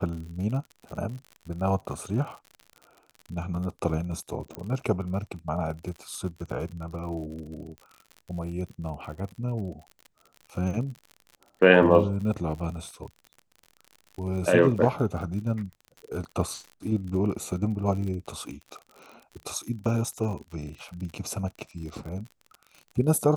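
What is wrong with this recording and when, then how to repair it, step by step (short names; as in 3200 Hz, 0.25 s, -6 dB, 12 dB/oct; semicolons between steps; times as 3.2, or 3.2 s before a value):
crackle 59/s -36 dBFS
4.55 pop -20 dBFS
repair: de-click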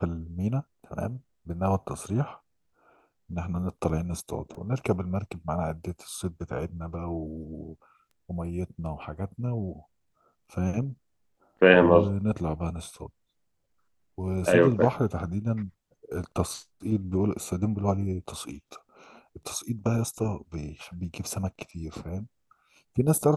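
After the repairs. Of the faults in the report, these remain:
4.55 pop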